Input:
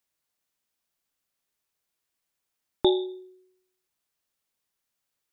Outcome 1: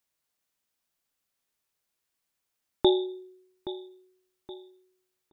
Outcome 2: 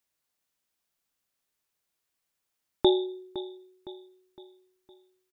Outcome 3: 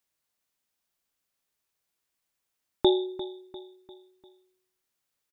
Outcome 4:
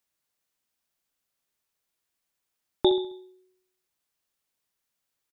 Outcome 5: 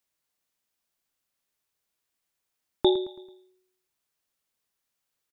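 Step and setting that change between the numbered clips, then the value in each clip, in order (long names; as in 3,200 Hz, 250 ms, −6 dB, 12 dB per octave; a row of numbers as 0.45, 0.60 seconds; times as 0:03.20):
repeating echo, delay time: 822, 511, 348, 67, 110 milliseconds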